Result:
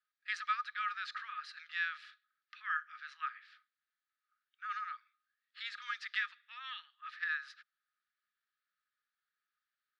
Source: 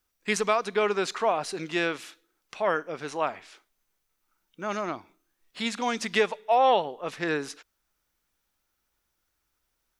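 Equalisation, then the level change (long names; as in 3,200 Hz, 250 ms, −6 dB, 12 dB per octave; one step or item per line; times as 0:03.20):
Chebyshev high-pass with heavy ripple 1,200 Hz, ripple 9 dB
dynamic equaliser 7,400 Hz, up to +4 dB, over −51 dBFS, Q 0.99
high-frequency loss of the air 410 metres
+2.5 dB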